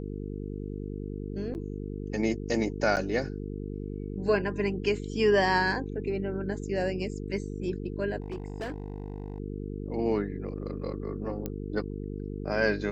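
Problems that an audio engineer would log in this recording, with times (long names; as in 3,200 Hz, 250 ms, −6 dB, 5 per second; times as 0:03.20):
mains buzz 50 Hz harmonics 9 −36 dBFS
0:01.54–0:01.55: drop-out 9.4 ms
0:02.96–0:02.97: drop-out 8.6 ms
0:08.20–0:09.40: clipping −31 dBFS
0:11.46: click −19 dBFS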